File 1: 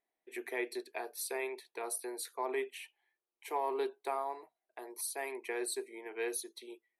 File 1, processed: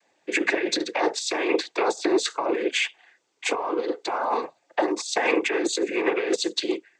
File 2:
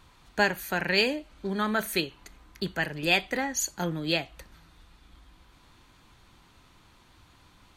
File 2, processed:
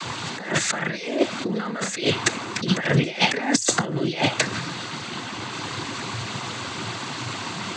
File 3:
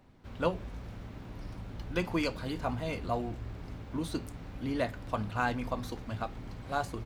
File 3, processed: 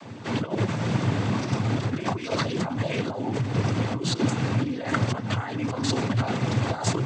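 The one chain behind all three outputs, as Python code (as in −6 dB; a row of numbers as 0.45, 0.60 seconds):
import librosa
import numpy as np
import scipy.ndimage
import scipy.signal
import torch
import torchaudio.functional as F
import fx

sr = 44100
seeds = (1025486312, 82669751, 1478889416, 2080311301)

y = fx.high_shelf(x, sr, hz=5600.0, db=3.0)
y = fx.over_compress(y, sr, threshold_db=-42.0, ratio=-1.0)
y = fx.noise_vocoder(y, sr, seeds[0], bands=16)
y = y * 10.0 ** (-26 / 20.0) / np.sqrt(np.mean(np.square(y)))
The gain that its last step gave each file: +19.5, +18.5, +17.5 decibels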